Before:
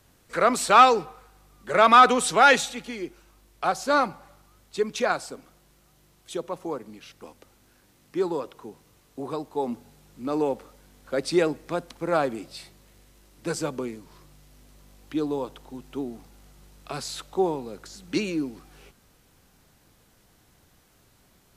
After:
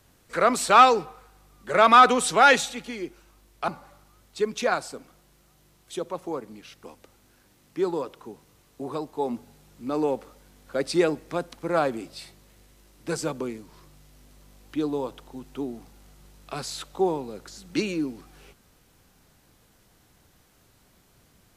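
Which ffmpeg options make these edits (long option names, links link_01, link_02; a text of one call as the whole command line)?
ffmpeg -i in.wav -filter_complex "[0:a]asplit=2[link_01][link_02];[link_01]atrim=end=3.682[link_03];[link_02]atrim=start=4.058[link_04];[link_03][link_04]acrossfade=duration=0.004:curve1=hsin:curve2=hsin" out.wav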